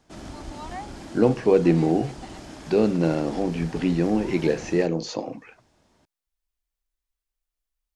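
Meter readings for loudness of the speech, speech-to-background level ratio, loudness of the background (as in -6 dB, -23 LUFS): -23.5 LUFS, 16.0 dB, -39.5 LUFS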